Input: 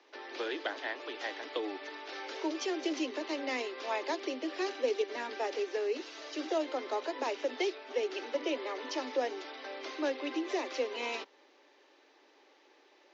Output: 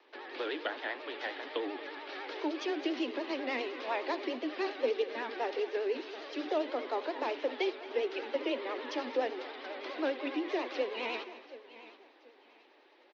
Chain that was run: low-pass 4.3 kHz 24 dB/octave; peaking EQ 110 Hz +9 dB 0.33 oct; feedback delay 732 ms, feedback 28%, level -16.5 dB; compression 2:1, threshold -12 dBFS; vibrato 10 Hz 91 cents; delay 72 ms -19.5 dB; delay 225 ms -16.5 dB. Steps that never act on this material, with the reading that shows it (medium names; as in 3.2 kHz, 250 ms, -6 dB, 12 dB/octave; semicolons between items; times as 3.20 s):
peaking EQ 110 Hz: input has nothing below 230 Hz; compression, threshold -12 dBFS: peak at its input -18.5 dBFS